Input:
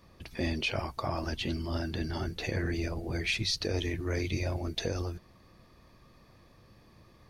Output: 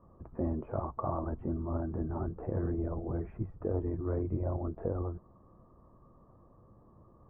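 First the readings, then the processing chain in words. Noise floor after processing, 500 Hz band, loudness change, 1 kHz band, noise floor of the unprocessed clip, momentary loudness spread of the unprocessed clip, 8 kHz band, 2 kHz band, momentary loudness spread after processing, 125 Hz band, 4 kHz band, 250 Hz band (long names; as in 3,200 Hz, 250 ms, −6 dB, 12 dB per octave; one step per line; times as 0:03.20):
−61 dBFS, 0.0 dB, −2.5 dB, −1.0 dB, −60 dBFS, 5 LU, below −35 dB, −22.5 dB, 4 LU, −1.0 dB, below −40 dB, −0.5 dB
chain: elliptic low-pass filter 1,200 Hz, stop band 70 dB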